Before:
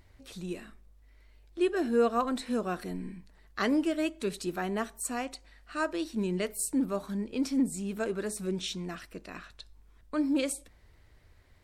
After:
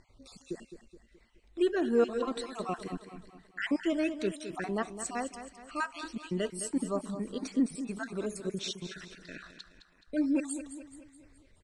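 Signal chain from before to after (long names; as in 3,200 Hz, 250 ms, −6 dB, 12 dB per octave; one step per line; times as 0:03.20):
time-frequency cells dropped at random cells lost 43%
Butterworth low-pass 9,400 Hz 36 dB per octave
parametric band 67 Hz −10 dB 0.67 octaves
repeating echo 212 ms, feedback 48%, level −11 dB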